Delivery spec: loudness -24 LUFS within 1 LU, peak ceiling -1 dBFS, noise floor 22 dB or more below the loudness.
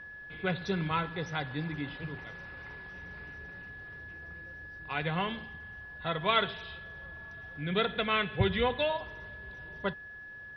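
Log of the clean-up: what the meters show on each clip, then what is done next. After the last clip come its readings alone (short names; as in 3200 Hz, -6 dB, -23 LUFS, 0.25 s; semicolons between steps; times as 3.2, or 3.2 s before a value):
steady tone 1700 Hz; tone level -44 dBFS; loudness -33.5 LUFS; peak -12.0 dBFS; loudness target -24.0 LUFS
-> notch 1700 Hz, Q 30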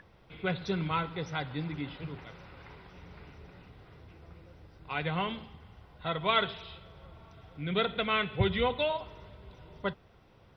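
steady tone none; loudness -32.5 LUFS; peak -12.5 dBFS; loudness target -24.0 LUFS
-> gain +8.5 dB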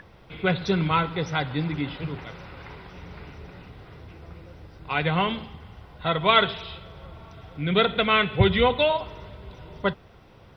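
loudness -24.0 LUFS; peak -4.0 dBFS; noise floor -51 dBFS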